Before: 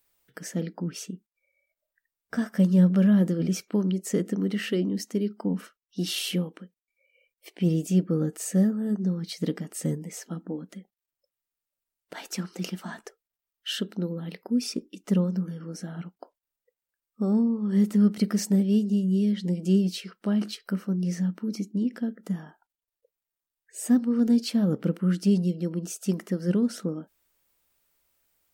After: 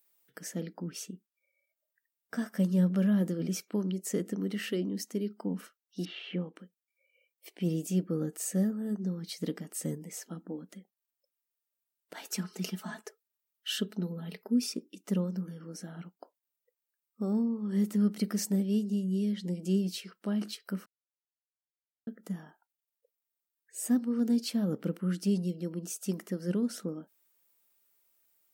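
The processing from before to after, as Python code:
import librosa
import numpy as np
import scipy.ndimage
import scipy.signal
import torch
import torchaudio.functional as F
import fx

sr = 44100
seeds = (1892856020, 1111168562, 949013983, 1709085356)

y = fx.lowpass(x, sr, hz=2600.0, slope=24, at=(6.05, 6.56))
y = fx.comb(y, sr, ms=4.7, depth=0.73, at=(12.26, 14.66))
y = fx.edit(y, sr, fx.silence(start_s=20.86, length_s=1.21), tone=tone)
y = scipy.signal.sosfilt(scipy.signal.butter(2, 150.0, 'highpass', fs=sr, output='sos'), y)
y = fx.high_shelf(y, sr, hz=8600.0, db=8.0)
y = F.gain(torch.from_numpy(y), -5.5).numpy()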